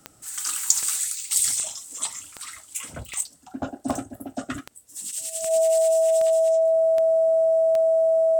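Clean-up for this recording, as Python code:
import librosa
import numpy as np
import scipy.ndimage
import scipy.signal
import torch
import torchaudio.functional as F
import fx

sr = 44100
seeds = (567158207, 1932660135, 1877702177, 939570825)

y = fx.fix_declick_ar(x, sr, threshold=10.0)
y = fx.notch(y, sr, hz=650.0, q=30.0)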